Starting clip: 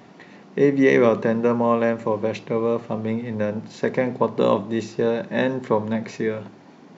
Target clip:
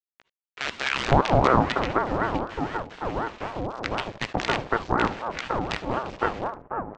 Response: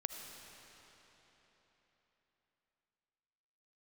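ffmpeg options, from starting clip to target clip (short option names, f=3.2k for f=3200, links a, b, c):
-filter_complex "[0:a]aresample=16000,acrusher=bits=3:dc=4:mix=0:aa=0.000001,aresample=44100,lowpass=3.3k,acrossover=split=980[a][b];[a]adelay=510[c];[c][b]amix=inputs=2:normalize=0[d];[1:a]atrim=start_sample=2205,atrim=end_sample=3528[e];[d][e]afir=irnorm=-1:irlink=0,aeval=exprs='val(0)*sin(2*PI*600*n/s+600*0.55/4*sin(2*PI*4*n/s))':c=same,volume=2dB"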